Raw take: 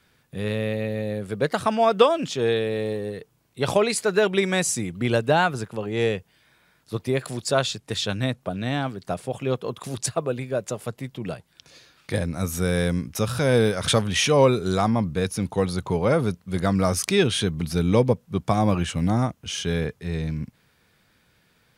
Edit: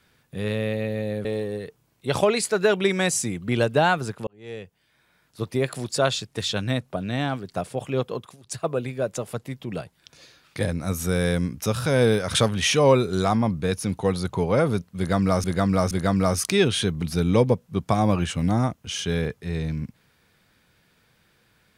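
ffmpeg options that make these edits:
ffmpeg -i in.wav -filter_complex "[0:a]asplit=7[link_01][link_02][link_03][link_04][link_05][link_06][link_07];[link_01]atrim=end=1.252[link_08];[link_02]atrim=start=2.778:end=5.8,asetpts=PTS-STARTPTS,afade=type=out:start_time=3.018:duration=0.004:curve=hsin[link_09];[link_03]atrim=start=5.8:end=9.9,asetpts=PTS-STARTPTS,afade=type=in:duration=1.22,afade=type=out:start_time=3.86:duration=0.24:silence=0.0944061[link_10];[link_04]atrim=start=9.9:end=9.96,asetpts=PTS-STARTPTS,volume=-20.5dB[link_11];[link_05]atrim=start=9.96:end=16.972,asetpts=PTS-STARTPTS,afade=type=in:duration=0.24:silence=0.0944061[link_12];[link_06]atrim=start=16.498:end=16.972[link_13];[link_07]atrim=start=16.498[link_14];[link_09][link_10][link_11][link_12]concat=n=4:v=0:a=1[link_15];[link_08][link_15]acrossfade=duration=0.004:curve1=hsin:curve2=hsin[link_16];[link_16][link_13]acrossfade=duration=0.004:curve1=hsin:curve2=hsin[link_17];[link_17][link_14]acrossfade=duration=0.004:curve1=hsin:curve2=hsin" out.wav

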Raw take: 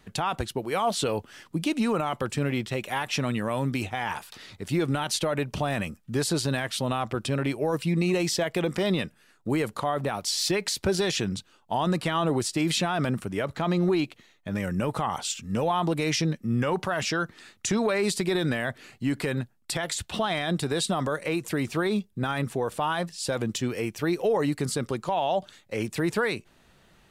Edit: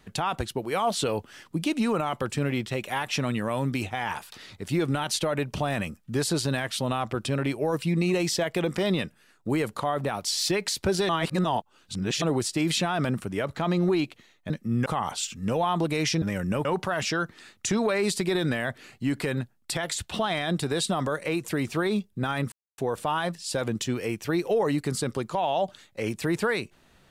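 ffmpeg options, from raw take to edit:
ffmpeg -i in.wav -filter_complex "[0:a]asplit=8[link_01][link_02][link_03][link_04][link_05][link_06][link_07][link_08];[link_01]atrim=end=11.092[link_09];[link_02]atrim=start=11.088:end=12.222,asetpts=PTS-STARTPTS,areverse[link_10];[link_03]atrim=start=12.218:end=14.502[link_11];[link_04]atrim=start=16.288:end=16.652[link_12];[link_05]atrim=start=14.928:end=16.292[link_13];[link_06]atrim=start=14.498:end=14.932[link_14];[link_07]atrim=start=16.648:end=22.52,asetpts=PTS-STARTPTS,afade=type=out:start_time=5.868:duration=0.004:curve=hsin,apad=pad_dur=0.26[link_15];[link_08]atrim=start=22.52,asetpts=PTS-STARTPTS,afade=type=in:duration=0.004:curve=hsin[link_16];[link_09][link_10]acrossfade=duration=0.004:curve1=hsin:curve2=hsin[link_17];[link_17][link_11]acrossfade=duration=0.004:curve1=hsin:curve2=hsin[link_18];[link_18][link_12]acrossfade=duration=0.004:curve1=hsin:curve2=hsin[link_19];[link_19][link_13]acrossfade=duration=0.004:curve1=hsin:curve2=hsin[link_20];[link_20][link_14]acrossfade=duration=0.004:curve1=hsin:curve2=hsin[link_21];[link_15][link_16]concat=n=2:v=0:a=1[link_22];[link_21][link_22]acrossfade=duration=0.004:curve1=hsin:curve2=hsin" out.wav

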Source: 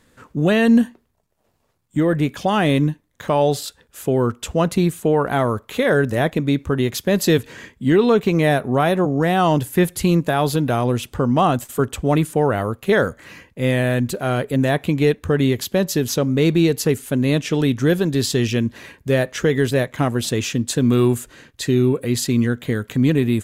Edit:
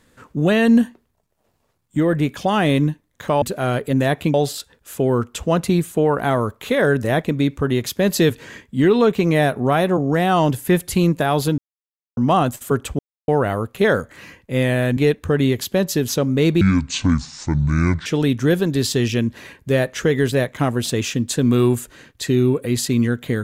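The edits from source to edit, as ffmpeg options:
ffmpeg -i in.wav -filter_complex "[0:a]asplit=10[link_01][link_02][link_03][link_04][link_05][link_06][link_07][link_08][link_09][link_10];[link_01]atrim=end=3.422[link_11];[link_02]atrim=start=14.048:end=14.972[link_12];[link_03]atrim=start=3.418:end=10.66,asetpts=PTS-STARTPTS,afade=type=out:start_time=7.238:duration=0.004:curve=hsin[link_13];[link_04]atrim=start=10.66:end=11.25,asetpts=PTS-STARTPTS,volume=0[link_14];[link_05]atrim=start=11.25:end=12.07,asetpts=PTS-STARTPTS,afade=type=in:duration=0.004:curve=hsin,afade=type=out:start_time=0.816:duration=0.004:curve=hsin[link_15];[link_06]atrim=start=12.07:end=12.36,asetpts=PTS-STARTPTS,volume=0[link_16];[link_07]atrim=start=12.36:end=14.052,asetpts=PTS-STARTPTS,afade=type=in:duration=0.004:curve=hsin[link_17];[link_08]atrim=start=14.968:end=16.614[link_18];[link_09]atrim=start=16.61:end=17.45,asetpts=PTS-STARTPTS,asetrate=25578,aresample=44100[link_19];[link_10]atrim=start=17.446[link_20];[link_11][link_12]acrossfade=duration=0.004:curve1=hsin:curve2=hsin[link_21];[link_13][link_14][link_15][link_16][link_17]concat=n=5:v=0:a=1[link_22];[link_21][link_22]acrossfade=duration=0.004:curve1=hsin:curve2=hsin[link_23];[link_23][link_18]acrossfade=duration=0.004:curve1=hsin:curve2=hsin[link_24];[link_24][link_19]acrossfade=duration=0.004:curve1=hsin:curve2=hsin[link_25];[link_25][link_20]acrossfade=duration=0.004:curve1=hsin:curve2=hsin" out.wav

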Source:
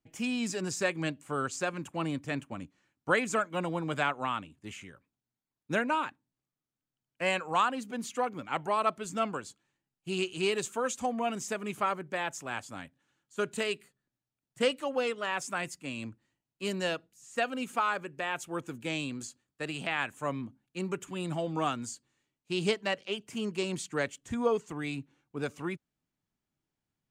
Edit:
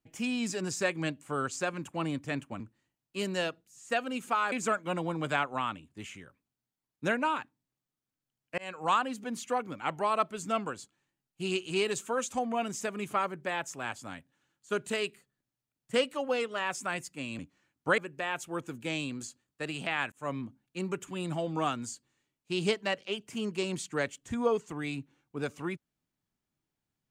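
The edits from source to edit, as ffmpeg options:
ffmpeg -i in.wav -filter_complex "[0:a]asplit=7[link_01][link_02][link_03][link_04][link_05][link_06][link_07];[link_01]atrim=end=2.602[link_08];[link_02]atrim=start=16.058:end=17.982[link_09];[link_03]atrim=start=3.188:end=7.25,asetpts=PTS-STARTPTS,afade=type=out:start_time=4.058:duration=0.004:curve=hsin[link_10];[link_04]atrim=start=7.25:end=16.062,asetpts=PTS-STARTPTS,afade=type=in:duration=0.29[link_11];[link_05]atrim=start=2.598:end=3.192[link_12];[link_06]atrim=start=17.978:end=20.12,asetpts=PTS-STARTPTS,afade=type=out:start_time=2.138:duration=0.004:curve=hsin[link_13];[link_07]atrim=start=20.12,asetpts=PTS-STARTPTS,afade=type=in:duration=0.27:curve=qsin[link_14];[link_08][link_09]acrossfade=duration=0.004:curve1=hsin:curve2=hsin[link_15];[link_10][link_11]concat=n=2:v=0:a=1[link_16];[link_15][link_16]acrossfade=duration=0.004:curve1=hsin:curve2=hsin[link_17];[link_17][link_12]acrossfade=duration=0.004:curve1=hsin:curve2=hsin[link_18];[link_13][link_14]concat=n=2:v=0:a=1[link_19];[link_18][link_19]acrossfade=duration=0.004:curve1=hsin:curve2=hsin" out.wav

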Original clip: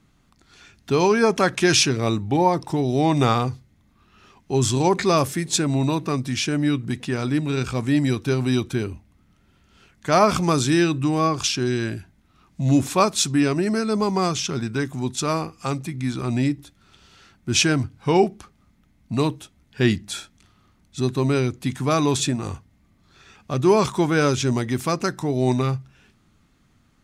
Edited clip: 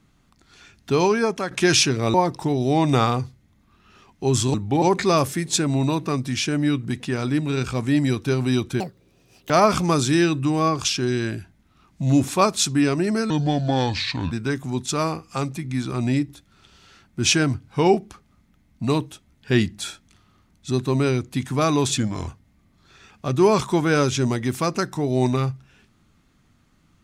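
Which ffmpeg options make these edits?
ffmpeg -i in.wav -filter_complex "[0:a]asplit=11[link_01][link_02][link_03][link_04][link_05][link_06][link_07][link_08][link_09][link_10][link_11];[link_01]atrim=end=1.51,asetpts=PTS-STARTPTS,afade=type=out:start_time=1:duration=0.51:silence=0.298538[link_12];[link_02]atrim=start=1.51:end=2.142,asetpts=PTS-STARTPTS,afade=type=in:duration=0.004:curve=hsin:silence=0.298538[link_13];[link_03]atrim=start=2.418:end=4.822[link_14];[link_04]atrim=start=2.138:end=2.422[link_15];[link_05]atrim=start=4.818:end=8.804[link_16];[link_06]atrim=start=8.8:end=10.09,asetpts=PTS-STARTPTS,asetrate=81144,aresample=44100[link_17];[link_07]atrim=start=10.086:end=13.894[link_18];[link_08]atrim=start=13.89:end=14.61,asetpts=PTS-STARTPTS,asetrate=31311,aresample=44100,atrim=end_sample=44721,asetpts=PTS-STARTPTS[link_19];[link_09]atrim=start=14.606:end=22.274[link_20];[link_10]atrim=start=22.27:end=22.53,asetpts=PTS-STARTPTS,asetrate=38367,aresample=44100,atrim=end_sample=13179,asetpts=PTS-STARTPTS[link_21];[link_11]atrim=start=22.526[link_22];[link_12][link_13]concat=n=2:v=0:a=1[link_23];[link_23][link_14]acrossfade=duration=0.004:curve1=hsin:curve2=hsin[link_24];[link_24][link_15]acrossfade=duration=0.004:curve1=hsin:curve2=hsin[link_25];[link_25][link_16]acrossfade=duration=0.004:curve1=hsin:curve2=hsin[link_26];[link_26][link_17]acrossfade=duration=0.004:curve1=hsin:curve2=hsin[link_27];[link_27][link_18]acrossfade=duration=0.004:curve1=hsin:curve2=hsin[link_28];[link_28][link_19]acrossfade=duration=0.004:curve1=hsin:curve2=hsin[link_29];[link_29][link_20]acrossfade=duration=0.004:curve1=hsin:curve2=hsin[link_30];[link_30][link_21]acrossfade=duration=0.004:curve1=hsin:curve2=hsin[link_31];[link_31][link_22]acrossfade=duration=0.004:curve1=hsin:curve2=hsin" out.wav

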